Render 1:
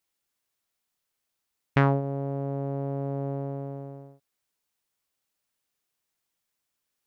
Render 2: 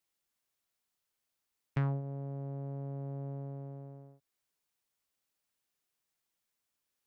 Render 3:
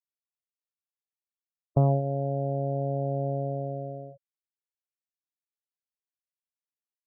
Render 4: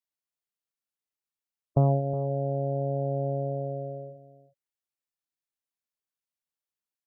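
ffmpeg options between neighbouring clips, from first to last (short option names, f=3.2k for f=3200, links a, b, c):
-filter_complex "[0:a]acrossover=split=140[a][b];[b]acompressor=threshold=-58dB:ratio=1.5[c];[a][c]amix=inputs=2:normalize=0,volume=-3.5dB"
-af "lowpass=f=640:t=q:w=4.9,afftfilt=real='re*gte(hypot(re,im),0.00794)':imag='im*gte(hypot(re,im),0.00794)':win_size=1024:overlap=0.75,volume=8.5dB"
-af "aecho=1:1:366:0.168"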